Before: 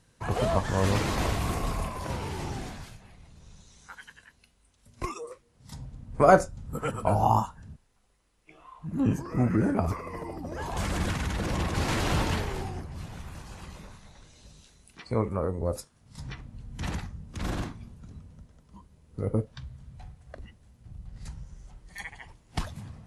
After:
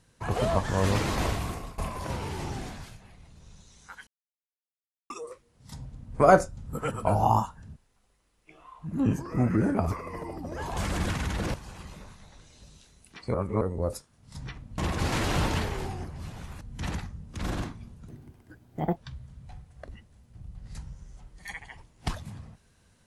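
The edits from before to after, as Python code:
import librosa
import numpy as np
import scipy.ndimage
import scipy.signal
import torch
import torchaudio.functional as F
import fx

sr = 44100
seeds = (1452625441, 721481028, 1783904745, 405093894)

y = fx.edit(x, sr, fx.fade_out_to(start_s=1.27, length_s=0.51, floor_db=-19.0),
    fx.silence(start_s=4.07, length_s=1.03),
    fx.move(start_s=11.54, length_s=1.83, to_s=16.61),
    fx.reverse_span(start_s=15.17, length_s=0.27),
    fx.speed_span(start_s=18.08, length_s=1.39, speed=1.57), tone=tone)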